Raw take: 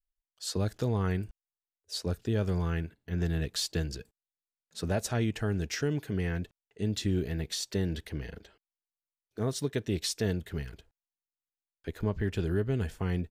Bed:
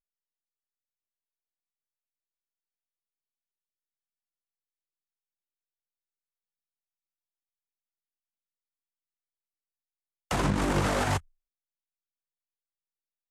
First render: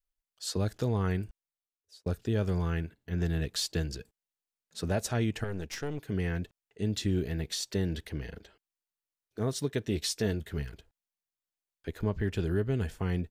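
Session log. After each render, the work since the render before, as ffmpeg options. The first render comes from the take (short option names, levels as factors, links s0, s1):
-filter_complex "[0:a]asettb=1/sr,asplit=3[s0][s1][s2];[s0]atrim=end=5.444[s3];[s1]atrim=start=5.44:end=6.09,asetpts=PTS-STARTPTS,afade=t=in:d=0.004:c=qsin,afade=t=out:st=0.646:d=0.004:c=qsin,aeval=exprs='(tanh(22.4*val(0)+0.8)-tanh(0.8))/22.4':c=same[s4];[s2]atrim=start=6.086[s5];[s3][s4]acrossfade=d=0.004:c1=hsin:c2=qsin[s6];[s6][s5]acrossfade=d=0.004:c1=qsin:c2=hsin,asettb=1/sr,asplit=3[s7][s8][s9];[s7]atrim=end=9.864[s10];[s8]atrim=start=9.86:end=10.68,asetpts=PTS-STARTPTS,afade=t=in:d=0.004:c=qsin,afade=t=out:st=0.816:d=0.004:c=qsin,asplit=2[s11][s12];[s12]adelay=14,volume=0.282[s13];[s11][s13]amix=inputs=2:normalize=0,atrim=end_sample=36162[s14];[s9]atrim=start=10.676[s15];[s10][s14]acrossfade=d=0.004:c1=hsin:c2=qsin[s16];[s16][s15]acrossfade=d=0.004:c1=qsin:c2=hsin,asplit=2[s17][s18];[s17]atrim=end=2.06,asetpts=PTS-STARTPTS,afade=t=out:st=1.19:d=0.87[s19];[s18]atrim=start=2.06,asetpts=PTS-STARTPTS,afade=t=in:d=0.004:c=hsin[s20];[s19][s20]concat=n=2:v=0:a=1"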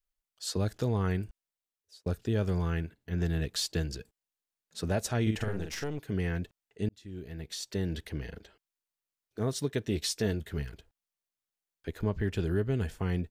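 -filter_complex "[0:a]asettb=1/sr,asplit=3[s0][s1][s2];[s0]atrim=end=5.224[s3];[s1]atrim=start=5.22:end=5.84,asetpts=PTS-STARTPTS,afade=t=in:d=0.004:c=qsin,afade=t=out:st=0.616:d=0.004:c=qsin,asplit=2[s4][s5];[s5]adelay=46,volume=0.596[s6];[s4][s6]amix=inputs=2:normalize=0,atrim=end_sample=27342[s7];[s2]atrim=start=5.836[s8];[s3][s7]acrossfade=d=0.004:c1=hsin:c2=qsin[s9];[s9][s8]acrossfade=d=0.004:c1=qsin:c2=hsin,asplit=2[s10][s11];[s10]atrim=end=6.89,asetpts=PTS-STARTPTS,afade=t=out:st=6.886:d=0.004:c=hsin[s12];[s11]atrim=start=6.89,asetpts=PTS-STARTPTS,afade=t=in:d=1.14[s13];[s12][s13]concat=n=2:v=0:a=1"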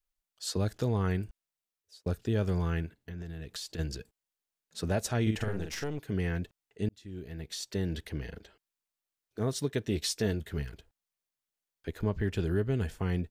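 -filter_complex "[0:a]asplit=3[s0][s1][s2];[s0]afade=t=out:st=2.99:d=0.02[s3];[s1]acompressor=threshold=0.0158:ratio=12:attack=3.2:release=140:knee=1:detection=peak,afade=t=in:st=2.99:d=0.02,afade=t=out:st=3.78:d=0.02[s4];[s2]afade=t=in:st=3.78:d=0.02[s5];[s3][s4][s5]amix=inputs=3:normalize=0"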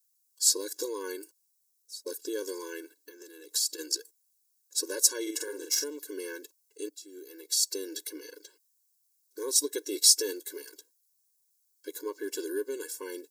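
-af "aexciter=amount=9.1:drive=4.5:freq=4300,afftfilt=real='re*eq(mod(floor(b*sr/1024/290),2),1)':imag='im*eq(mod(floor(b*sr/1024/290),2),1)':win_size=1024:overlap=0.75"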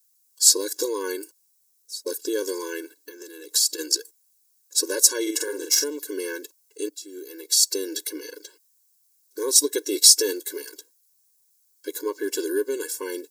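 -af "volume=2.51,alimiter=limit=0.891:level=0:latency=1"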